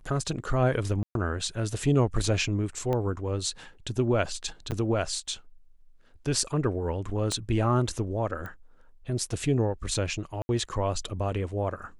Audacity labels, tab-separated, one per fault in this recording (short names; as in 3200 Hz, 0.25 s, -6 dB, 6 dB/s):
1.030000	1.150000	gap 0.122 s
2.930000	2.930000	pop -18 dBFS
4.710000	4.720000	gap 8.9 ms
7.320000	7.320000	pop -17 dBFS
8.460000	8.460000	pop -25 dBFS
10.420000	10.490000	gap 71 ms